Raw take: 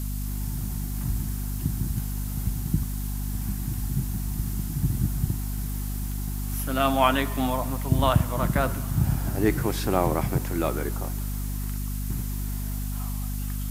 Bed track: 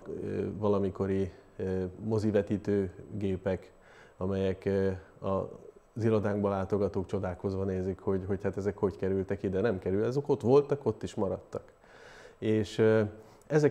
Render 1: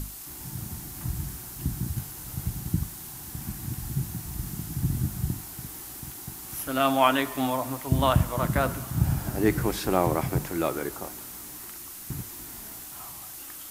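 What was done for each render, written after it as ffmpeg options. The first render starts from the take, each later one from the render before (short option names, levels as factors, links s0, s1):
-af "bandreject=f=50:t=h:w=6,bandreject=f=100:t=h:w=6,bandreject=f=150:t=h:w=6,bandreject=f=200:t=h:w=6,bandreject=f=250:t=h:w=6"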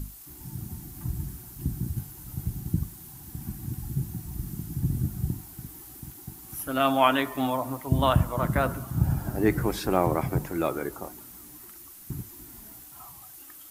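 -af "afftdn=nr=9:nf=-41"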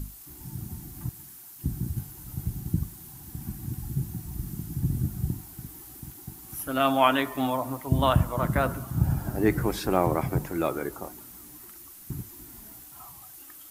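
-filter_complex "[0:a]asettb=1/sr,asplit=3[s0][s1][s2];[s0]atrim=end=1.094[s3];[s1]atrim=start=1.09:end=1.64,asetpts=PTS-STARTPTS,afade=t=in:d=0.004:c=qsin,afade=t=out:st=0.546:d=0.004:c=qsin,highpass=f=1200:p=1[s4];[s2]atrim=start=1.636[s5];[s3][s4]acrossfade=d=0.004:c1=hsin:c2=qsin[s6];[s6][s5]acrossfade=d=0.004:c1=qsin:c2=hsin"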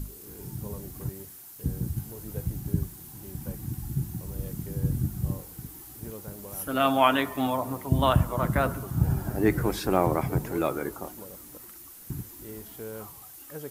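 -filter_complex "[1:a]volume=0.178[s0];[0:a][s0]amix=inputs=2:normalize=0"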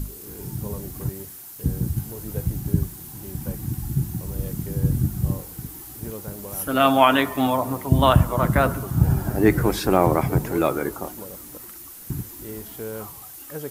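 -af "volume=2,alimiter=limit=0.708:level=0:latency=1"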